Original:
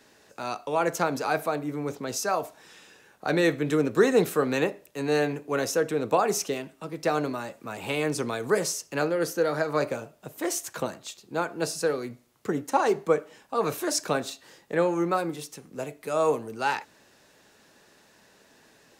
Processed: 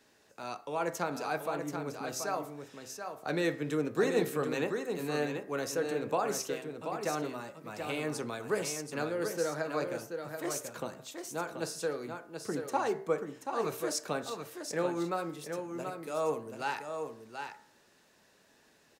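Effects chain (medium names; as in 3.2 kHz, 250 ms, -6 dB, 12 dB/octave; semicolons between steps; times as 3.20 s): de-hum 64.79 Hz, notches 34; on a send: delay 732 ms -6.5 dB; on the sum: trim -7.5 dB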